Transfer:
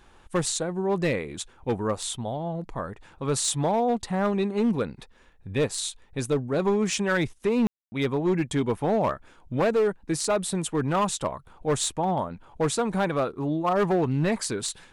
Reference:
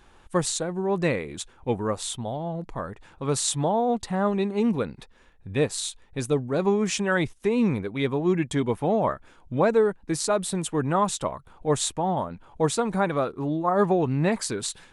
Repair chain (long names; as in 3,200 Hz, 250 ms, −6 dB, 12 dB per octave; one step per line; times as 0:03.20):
clipped peaks rebuilt −18 dBFS
ambience match 0:07.67–0:07.92